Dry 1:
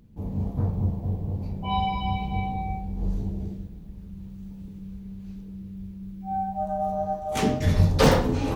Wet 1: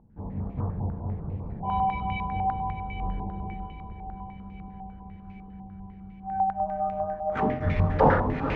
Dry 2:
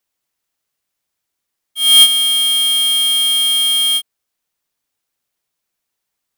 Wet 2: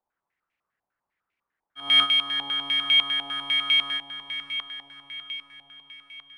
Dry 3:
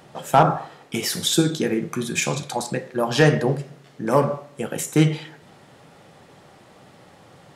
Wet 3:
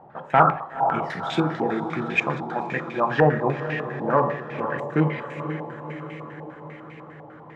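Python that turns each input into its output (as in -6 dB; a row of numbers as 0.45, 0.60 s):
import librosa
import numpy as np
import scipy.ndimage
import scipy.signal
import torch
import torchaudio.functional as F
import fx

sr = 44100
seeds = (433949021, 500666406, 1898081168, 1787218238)

y = fx.echo_diffused(x, sr, ms=509, feedback_pct=64, wet_db=-9)
y = fx.filter_held_lowpass(y, sr, hz=10.0, low_hz=860.0, high_hz=2300.0)
y = y * librosa.db_to_amplitude(-4.5)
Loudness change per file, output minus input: -2.0, -11.5, -2.0 LU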